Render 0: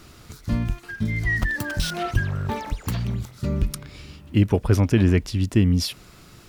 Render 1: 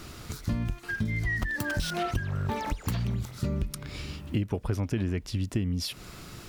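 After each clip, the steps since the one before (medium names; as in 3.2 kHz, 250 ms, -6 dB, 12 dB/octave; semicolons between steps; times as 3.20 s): compression 6:1, threshold -30 dBFS, peak gain reduction 16.5 dB; trim +3.5 dB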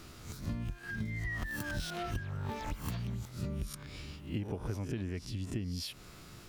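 reverse spectral sustain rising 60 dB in 0.40 s; trim -9 dB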